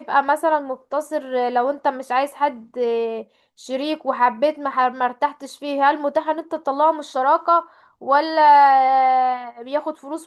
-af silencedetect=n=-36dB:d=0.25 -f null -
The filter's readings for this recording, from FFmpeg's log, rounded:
silence_start: 3.23
silence_end: 3.60 | silence_duration: 0.37
silence_start: 7.66
silence_end: 8.02 | silence_duration: 0.35